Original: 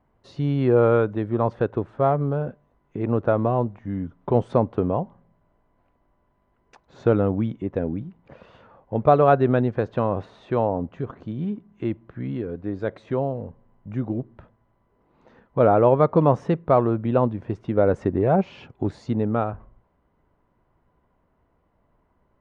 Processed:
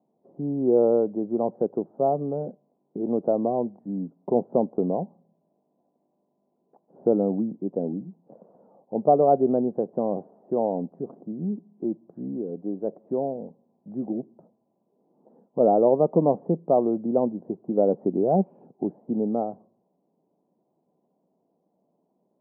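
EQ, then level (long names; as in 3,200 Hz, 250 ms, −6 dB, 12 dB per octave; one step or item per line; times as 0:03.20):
Chebyshev band-pass filter 180–770 Hz, order 3
high-frequency loss of the air 340 metres
0.0 dB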